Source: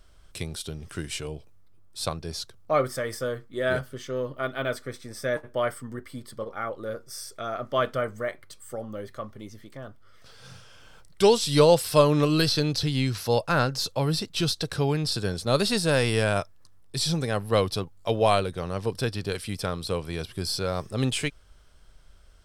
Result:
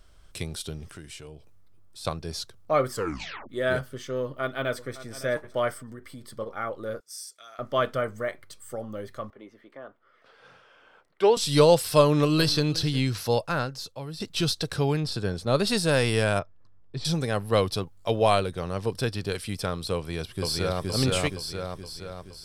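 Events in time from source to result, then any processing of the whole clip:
0.9–2.05 compressor 2:1, threshold -46 dBFS
2.91 tape stop 0.58 s
4.22–5.21 echo throw 0.56 s, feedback 15%, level -15.5 dB
5.77–6.36 compressor 3:1, threshold -39 dBFS
7–7.59 band-pass 7900 Hz, Q 0.75
9.3–11.37 three-band isolator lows -22 dB, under 270 Hz, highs -21 dB, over 2800 Hz
12.02–12.63 echo throw 0.36 s, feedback 15%, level -17.5 dB
13.28–14.2 fade out quadratic, to -12.5 dB
15–15.67 high shelf 3600 Hz -8.5 dB
16.39–17.05 tape spacing loss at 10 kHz 32 dB
19.95–20.88 echo throw 0.47 s, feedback 55%, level -0.5 dB

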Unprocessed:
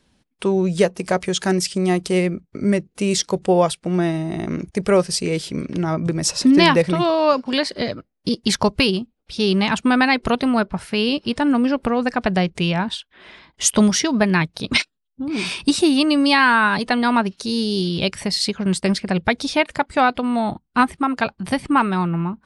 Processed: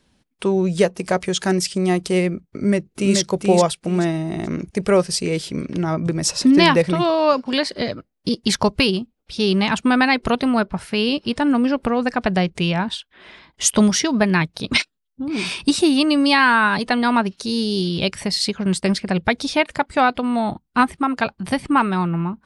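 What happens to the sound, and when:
2.42–3.18 echo throw 0.43 s, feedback 25%, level -3.5 dB

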